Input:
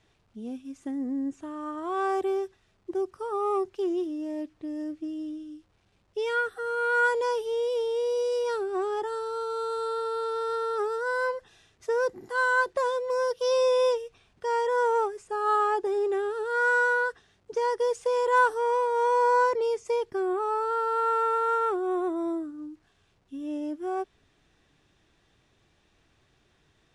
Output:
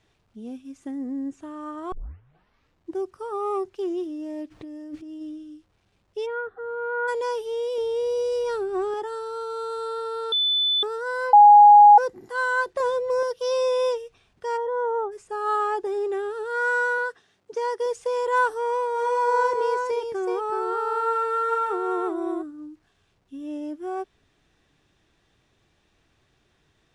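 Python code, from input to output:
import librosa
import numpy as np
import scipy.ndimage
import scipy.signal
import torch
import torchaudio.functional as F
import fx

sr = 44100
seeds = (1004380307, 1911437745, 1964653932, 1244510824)

y = fx.over_compress(x, sr, threshold_db=-42.0, ratio=-1.0, at=(4.5, 5.2), fade=0.02)
y = fx.lowpass(y, sr, hz=1100.0, slope=12, at=(6.25, 7.07), fade=0.02)
y = fx.low_shelf(y, sr, hz=210.0, db=12.0, at=(7.78, 8.94))
y = fx.low_shelf(y, sr, hz=370.0, db=11.5, at=(12.8, 13.23))
y = fx.moving_average(y, sr, points=18, at=(14.56, 15.11), fade=0.02)
y = fx.bessel_highpass(y, sr, hz=170.0, order=2, at=(16.98, 17.86))
y = fx.echo_single(y, sr, ms=376, db=-5.0, at=(18.95, 22.41), fade=0.02)
y = fx.edit(y, sr, fx.tape_start(start_s=1.92, length_s=1.04),
    fx.bleep(start_s=10.32, length_s=0.51, hz=3500.0, db=-19.0),
    fx.bleep(start_s=11.33, length_s=0.65, hz=827.0, db=-7.0), tone=tone)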